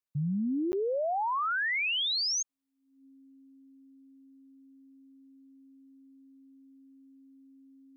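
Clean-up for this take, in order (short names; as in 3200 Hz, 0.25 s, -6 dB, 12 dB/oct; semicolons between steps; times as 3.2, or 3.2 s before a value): notch 270 Hz, Q 30; interpolate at 0.72, 10 ms; expander -49 dBFS, range -21 dB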